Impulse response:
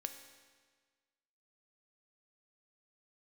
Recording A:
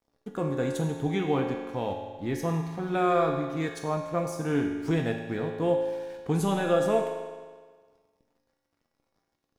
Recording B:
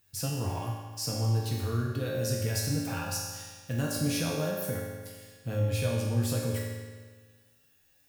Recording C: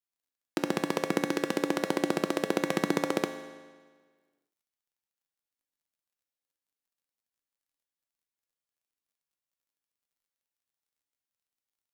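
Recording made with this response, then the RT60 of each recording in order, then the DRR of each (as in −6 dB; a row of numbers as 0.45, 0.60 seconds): C; 1.5, 1.5, 1.5 seconds; 0.0, −5.0, 6.0 decibels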